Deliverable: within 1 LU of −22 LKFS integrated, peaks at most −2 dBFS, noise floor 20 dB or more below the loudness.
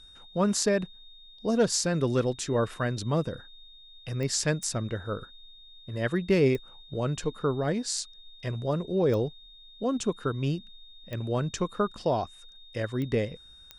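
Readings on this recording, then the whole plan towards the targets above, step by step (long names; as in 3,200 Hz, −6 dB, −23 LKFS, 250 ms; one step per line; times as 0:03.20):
number of clicks 7; interfering tone 3,700 Hz; level of the tone −50 dBFS; integrated loudness −29.0 LKFS; sample peak −10.0 dBFS; target loudness −22.0 LKFS
→ click removal
notch filter 3,700 Hz, Q 30
level +7 dB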